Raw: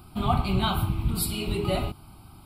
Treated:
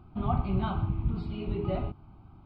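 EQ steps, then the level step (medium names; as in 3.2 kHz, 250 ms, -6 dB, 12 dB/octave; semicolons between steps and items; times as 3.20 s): distance through air 160 m; tape spacing loss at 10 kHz 36 dB; -2.5 dB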